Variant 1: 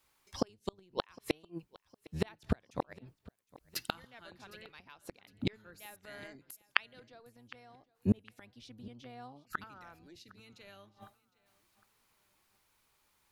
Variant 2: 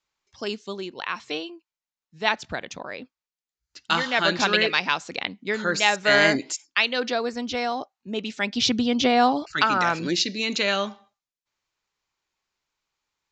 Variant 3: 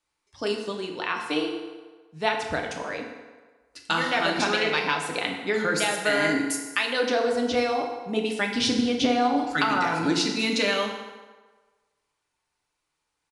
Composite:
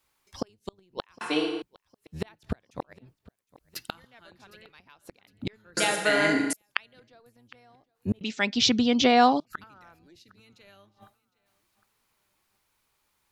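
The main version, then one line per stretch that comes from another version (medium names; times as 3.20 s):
1
1.21–1.62 s: from 3
5.77–6.53 s: from 3
8.21–9.40 s: from 2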